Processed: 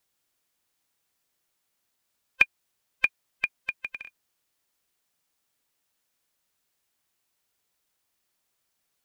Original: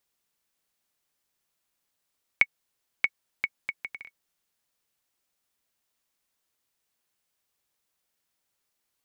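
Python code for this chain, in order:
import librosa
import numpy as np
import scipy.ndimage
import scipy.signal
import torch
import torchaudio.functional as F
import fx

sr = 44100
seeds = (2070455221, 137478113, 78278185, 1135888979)

y = fx.band_invert(x, sr, width_hz=500)
y = F.gain(torch.from_numpy(y), 2.5).numpy()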